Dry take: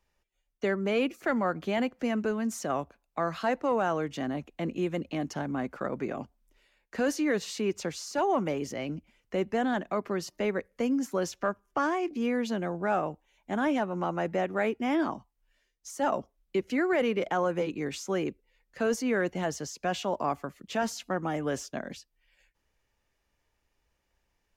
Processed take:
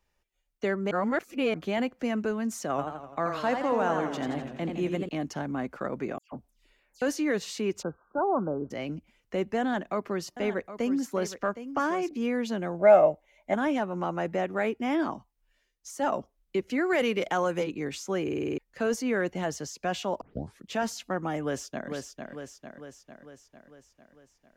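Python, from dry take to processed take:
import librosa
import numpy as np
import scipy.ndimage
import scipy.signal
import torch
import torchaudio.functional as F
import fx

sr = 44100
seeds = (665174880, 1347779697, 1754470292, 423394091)

y = fx.echo_warbled(x, sr, ms=85, feedback_pct=60, rate_hz=2.8, cents=142, wet_db=-6, at=(2.69, 5.09))
y = fx.dispersion(y, sr, late='lows', ms=144.0, hz=2300.0, at=(6.18, 7.02))
y = fx.brickwall_lowpass(y, sr, high_hz=1600.0, at=(7.81, 8.7), fade=0.02)
y = fx.echo_single(y, sr, ms=765, db=-12.0, at=(9.6, 12.09))
y = fx.small_body(y, sr, hz=(610.0, 2100.0), ring_ms=35, db=17, at=(12.79, 13.54))
y = fx.high_shelf(y, sr, hz=2600.0, db=8.5, at=(16.86, 17.64))
y = fx.echo_throw(y, sr, start_s=21.42, length_s=0.48, ms=450, feedback_pct=60, wet_db=-5.0)
y = fx.edit(y, sr, fx.reverse_span(start_s=0.91, length_s=0.63),
    fx.stutter_over(start_s=18.23, slice_s=0.05, count=7),
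    fx.tape_start(start_s=20.21, length_s=0.4), tone=tone)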